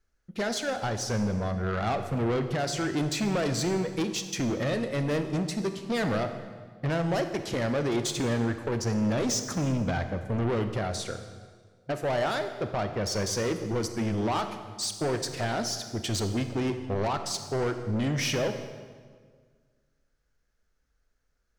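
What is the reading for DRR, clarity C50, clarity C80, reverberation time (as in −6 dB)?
8.0 dB, 9.0 dB, 10.5 dB, 1.7 s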